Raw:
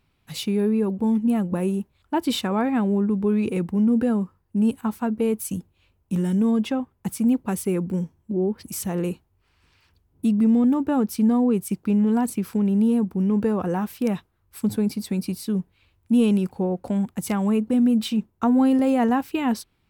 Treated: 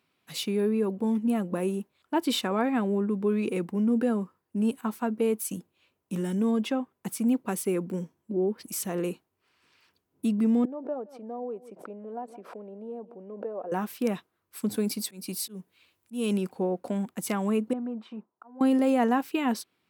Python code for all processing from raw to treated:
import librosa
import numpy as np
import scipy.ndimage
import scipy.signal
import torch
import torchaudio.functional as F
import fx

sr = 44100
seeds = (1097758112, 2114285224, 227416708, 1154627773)

y = fx.chain(x, sr, fx.bandpass_q(hz=610.0, q=3.8),
    fx.echo_single(ms=169, db=-22.5),
    fx.pre_swell(db_per_s=100.0), at=(10.65, 13.72))
y = fx.chain(y, sr, fx.auto_swell(attack_ms=252.0),
    fx.high_shelf(hz=3900.0, db=8.5), at=(14.74, 16.33))
y = fx.chain(y, sr, fx.bandpass_q(hz=960.0, q=1.9),
    fx.tilt_eq(slope=-3.0),
    fx.auto_swell(attack_ms=691.0), at=(17.73, 18.61))
y = scipy.signal.sosfilt(scipy.signal.butter(2, 250.0, 'highpass', fs=sr, output='sos'), y)
y = fx.notch(y, sr, hz=850.0, q=12.0)
y = y * librosa.db_to_amplitude(-1.5)